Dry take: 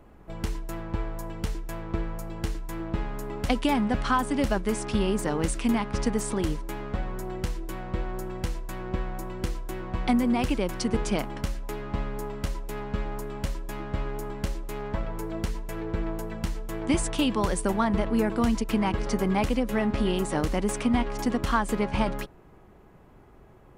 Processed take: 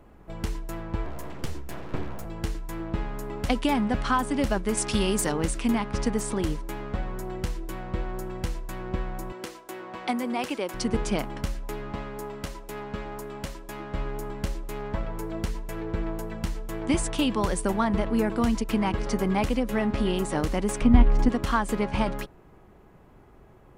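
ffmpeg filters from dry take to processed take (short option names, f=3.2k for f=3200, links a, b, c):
-filter_complex "[0:a]asettb=1/sr,asplit=3[a][b][c];[a]atrim=end=1.054[d];[b]atrim=start=1.05:end=2.25,asetpts=PTS-STARTPTS,afade=t=in:d=0.004:c=qsin,afade=t=out:st=1.196:d=0.004:c=qsin,aeval=exprs='abs(val(0))':c=same[e];[c]atrim=start=2.246[f];[d][e]acrossfade=d=0.004:c1=hsin:c2=qsin[g];[g][f]acrossfade=d=0.004:c1=qsin:c2=hsin,asettb=1/sr,asplit=3[h][i][j];[h]atrim=end=4.774[k];[i]atrim=start=4.77:end=5.32,asetpts=PTS-STARTPTS,afade=t=in:d=0.004:c=qsin,afade=t=out:st=0.546:d=0.004:c=qsin,highshelf=f=2.9k:g=11[l];[j]atrim=start=5.316[m];[k][l]acrossfade=d=0.004:c1=hsin:c2=qsin[n];[n][m]acrossfade=d=0.004:c1=qsin:c2=hsin,asettb=1/sr,asplit=3[o][p][q];[o]atrim=end=9.324[r];[p]atrim=start=9.32:end=10.74,asetpts=PTS-STARTPTS,afade=t=in:d=0.004:c=qsin,afade=t=out:st=1.416:d=0.004:c=qsin,highpass=340[s];[q]atrim=start=10.736[t];[r][s]acrossfade=d=0.004:c1=hsin:c2=qsin[u];[u][t]acrossfade=d=0.004:c1=qsin:c2=hsin,asettb=1/sr,asplit=3[v][w][x];[v]atrim=end=11.924[y];[w]atrim=start=11.92:end=13.95,asetpts=PTS-STARTPTS,afade=t=in:d=0.004:c=qsin,afade=t=out:st=2.026:d=0.004:c=qsin,lowshelf=f=120:g=-10[z];[x]atrim=start=13.946[aa];[y][z]acrossfade=d=0.004:c1=hsin:c2=qsin[ab];[ab][aa]acrossfade=d=0.004:c1=qsin:c2=hsin,asettb=1/sr,asplit=3[ac][ad][ae];[ac]atrim=end=20.814[af];[ad]atrim=start=20.81:end=21.29,asetpts=PTS-STARTPTS,afade=t=in:d=0.004:c=qsin,afade=t=out:st=0.476:d=0.004:c=qsin,aemphasis=mode=reproduction:type=bsi[ag];[ae]atrim=start=21.286[ah];[af][ag]acrossfade=d=0.004:c1=hsin:c2=qsin[ai];[ai][ah]acrossfade=d=0.004:c1=qsin:c2=hsin"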